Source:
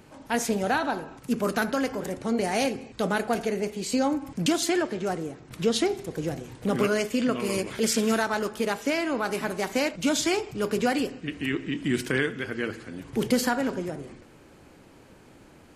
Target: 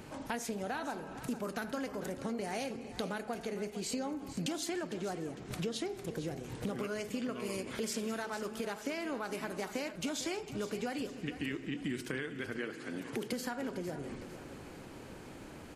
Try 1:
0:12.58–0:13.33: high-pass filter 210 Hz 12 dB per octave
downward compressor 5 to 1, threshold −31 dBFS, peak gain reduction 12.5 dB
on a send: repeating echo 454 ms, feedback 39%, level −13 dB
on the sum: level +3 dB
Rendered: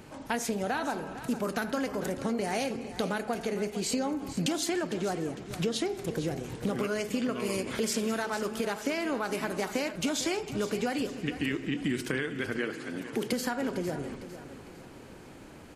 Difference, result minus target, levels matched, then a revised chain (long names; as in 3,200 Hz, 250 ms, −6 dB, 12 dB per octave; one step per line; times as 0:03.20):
downward compressor: peak gain reduction −7 dB
0:12.58–0:13.33: high-pass filter 210 Hz 12 dB per octave
downward compressor 5 to 1, threshold −39.5 dBFS, peak gain reduction 19 dB
on a send: repeating echo 454 ms, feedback 39%, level −13 dB
on the sum: level +3 dB